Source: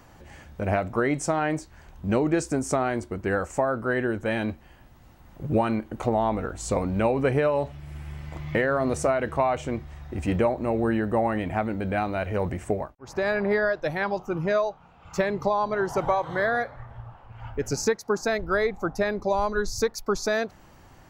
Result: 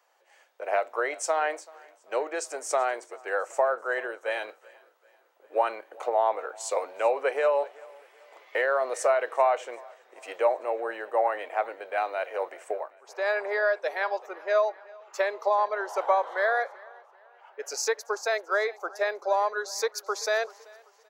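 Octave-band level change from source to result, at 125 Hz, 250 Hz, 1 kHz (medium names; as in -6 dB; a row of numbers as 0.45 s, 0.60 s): under -40 dB, -21.0 dB, +0.5 dB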